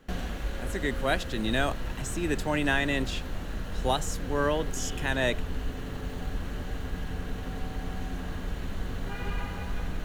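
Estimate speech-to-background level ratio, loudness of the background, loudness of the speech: 6.5 dB, -36.5 LUFS, -30.0 LUFS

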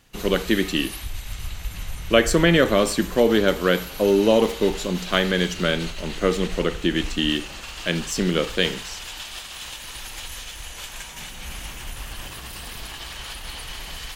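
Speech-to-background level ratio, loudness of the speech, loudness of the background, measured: 13.0 dB, -21.5 LUFS, -34.5 LUFS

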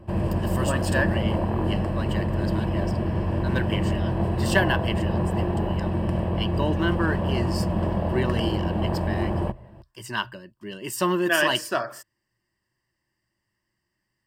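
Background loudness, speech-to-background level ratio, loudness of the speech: -26.0 LUFS, -3.0 dB, -29.0 LUFS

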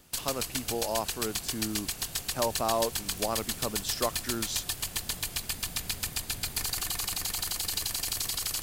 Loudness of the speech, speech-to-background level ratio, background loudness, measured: -34.0 LUFS, -2.5 dB, -31.5 LUFS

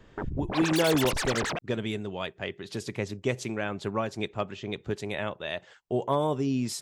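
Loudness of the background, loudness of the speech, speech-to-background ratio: -31.5 LUFS, -31.0 LUFS, 0.5 dB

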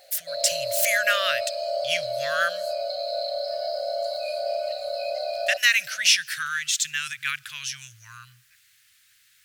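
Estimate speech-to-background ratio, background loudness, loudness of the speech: 5.0 dB, -29.0 LUFS, -24.0 LUFS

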